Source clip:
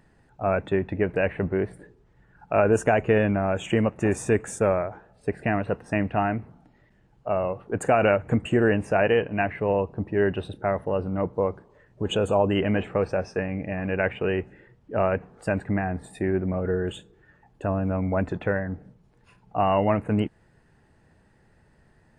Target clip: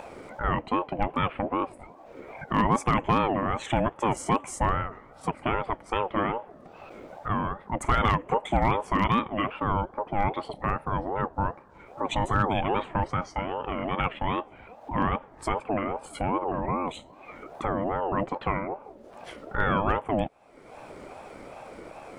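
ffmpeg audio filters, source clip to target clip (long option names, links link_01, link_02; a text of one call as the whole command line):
ffmpeg -i in.wav -af "asoftclip=type=hard:threshold=-11.5dB,acompressor=mode=upward:threshold=-24dB:ratio=2.5,aeval=exprs='val(0)*sin(2*PI*560*n/s+560*0.3/2.5*sin(2*PI*2.5*n/s))':channel_layout=same" out.wav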